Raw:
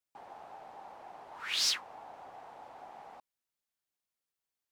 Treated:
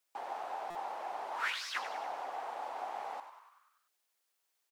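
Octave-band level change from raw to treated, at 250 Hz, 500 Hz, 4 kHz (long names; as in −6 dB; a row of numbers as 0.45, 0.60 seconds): +2.0, +8.0, −10.0 decibels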